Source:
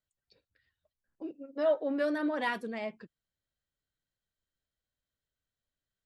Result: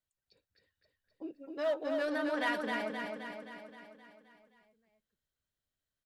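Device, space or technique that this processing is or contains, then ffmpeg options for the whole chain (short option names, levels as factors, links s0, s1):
parallel distortion: -filter_complex "[0:a]asplit=2[s0][s1];[s1]asoftclip=type=hard:threshold=0.0299,volume=0.562[s2];[s0][s2]amix=inputs=2:normalize=0,asettb=1/sr,asplit=3[s3][s4][s5];[s3]atrim=end=1.334[s6];[s4]atrim=start=1.33:end=2.61,asetpts=PTS-STARTPTS,afade=t=in:d=0.004:c=qsin,afade=t=out:st=1.276:d=0.004:c=qsin,tiltshelf=f=710:g=-5[s7];[s5]atrim=start=2.606[s8];[s6][s7]acrossfade=d=0.004:c1=hsin:c2=qsin[s9];[s9][s8]acrossfade=d=0.004:c1=qsin:c2=hsin,aecho=1:1:262|524|786|1048|1310|1572|1834|2096:0.631|0.372|0.22|0.13|0.0765|0.0451|0.0266|0.0157,volume=0.473"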